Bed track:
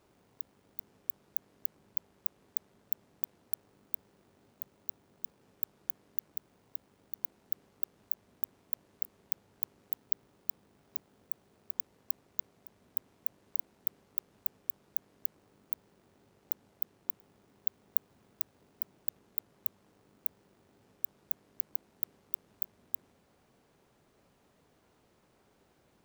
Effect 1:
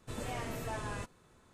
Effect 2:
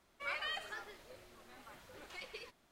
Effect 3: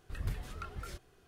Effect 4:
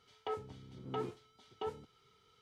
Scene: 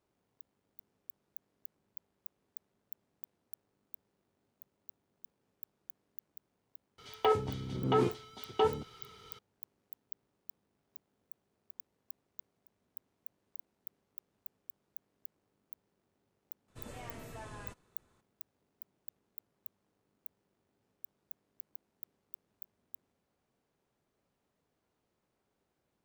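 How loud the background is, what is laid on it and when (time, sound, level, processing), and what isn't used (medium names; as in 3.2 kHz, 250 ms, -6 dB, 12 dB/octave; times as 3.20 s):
bed track -13.5 dB
6.98 s: add 4 -16 dB + loudness maximiser +29.5 dB
16.68 s: add 1 -8 dB
not used: 2, 3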